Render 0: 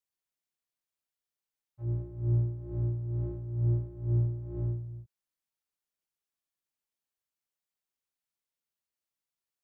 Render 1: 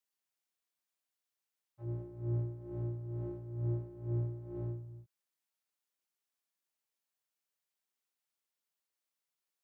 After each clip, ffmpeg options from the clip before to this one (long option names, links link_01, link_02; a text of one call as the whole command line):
ffmpeg -i in.wav -af "highpass=frequency=300:poles=1,volume=1dB" out.wav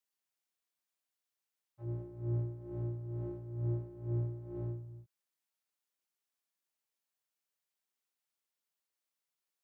ffmpeg -i in.wav -af anull out.wav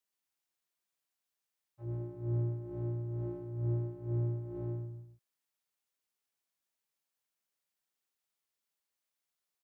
ffmpeg -i in.wav -af "aecho=1:1:127:0.473" out.wav